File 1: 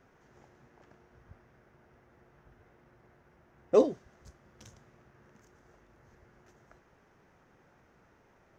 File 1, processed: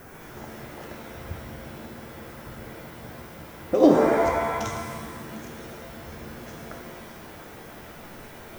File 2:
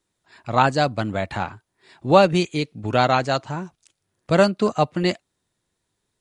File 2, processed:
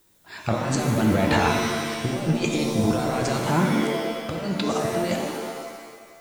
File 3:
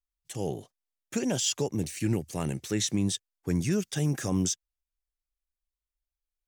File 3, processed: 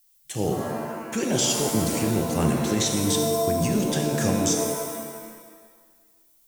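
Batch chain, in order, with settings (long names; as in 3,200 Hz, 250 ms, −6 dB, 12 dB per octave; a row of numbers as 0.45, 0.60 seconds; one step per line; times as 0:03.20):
compressor whose output falls as the input rises −29 dBFS, ratio −1
background noise violet −66 dBFS
reverb with rising layers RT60 1.5 s, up +7 semitones, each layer −2 dB, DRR 3 dB
loudness normalisation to −24 LKFS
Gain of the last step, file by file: +11.0, +1.5, +3.5 decibels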